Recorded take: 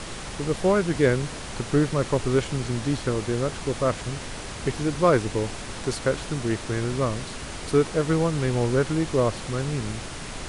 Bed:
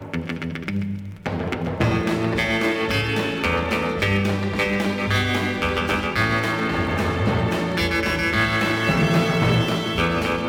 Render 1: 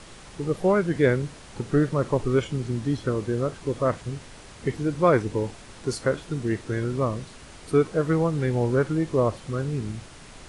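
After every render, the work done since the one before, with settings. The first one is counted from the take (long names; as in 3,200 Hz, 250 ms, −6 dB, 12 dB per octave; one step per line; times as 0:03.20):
noise reduction from a noise print 10 dB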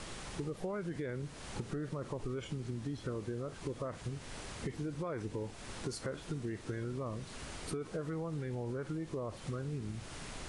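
brickwall limiter −19.5 dBFS, peak gain reduction 11 dB
downward compressor 5 to 1, threshold −37 dBFS, peak gain reduction 12.5 dB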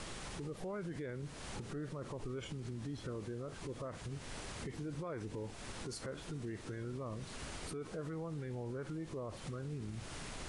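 brickwall limiter −35 dBFS, peak gain reduction 8.5 dB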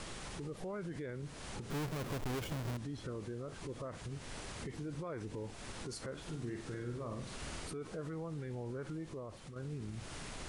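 0:01.70–0:02.77: each half-wave held at its own peak
0:06.21–0:07.63: flutter between parallel walls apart 8.6 metres, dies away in 0.49 s
0:08.95–0:09.56: fade out linear, to −8 dB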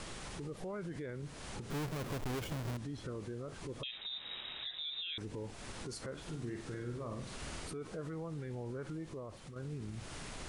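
0:03.83–0:05.18: voice inversion scrambler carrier 3,800 Hz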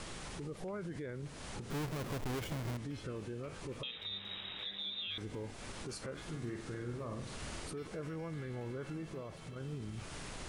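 mix in bed −35.5 dB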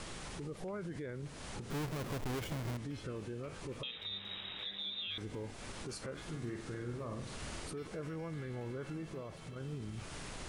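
no processing that can be heard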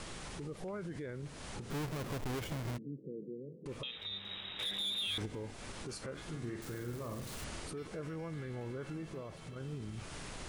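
0:02.78–0:03.66: Chebyshev band-pass filter 140–490 Hz, order 4
0:04.59–0:05.26: leveller curve on the samples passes 2
0:06.62–0:07.44: spike at every zero crossing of −43 dBFS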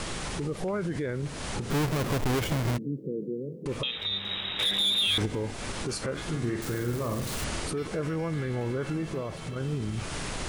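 level +11.5 dB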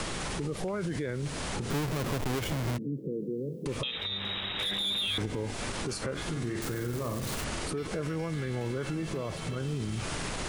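brickwall limiter −26 dBFS, peak gain reduction 6.5 dB
multiband upward and downward compressor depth 40%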